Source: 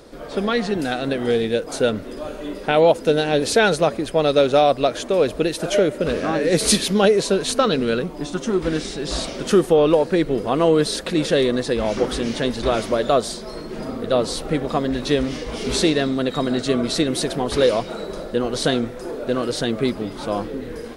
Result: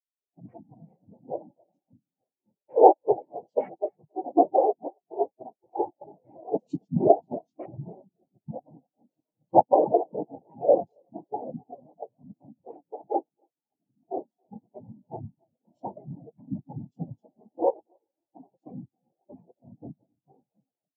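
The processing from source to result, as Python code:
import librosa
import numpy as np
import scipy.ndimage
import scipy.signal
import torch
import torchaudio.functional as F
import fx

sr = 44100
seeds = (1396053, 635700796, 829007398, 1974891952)

p1 = fx.noise_vocoder(x, sr, seeds[0], bands=4)
p2 = fx.over_compress(p1, sr, threshold_db=-27.0, ratio=-1.0, at=(1.47, 1.94))
p3 = p2 + fx.echo_feedback(p2, sr, ms=274, feedback_pct=24, wet_db=-11.0, dry=0)
p4 = fx.spectral_expand(p3, sr, expansion=4.0)
y = p4 * librosa.db_to_amplitude(-1.0)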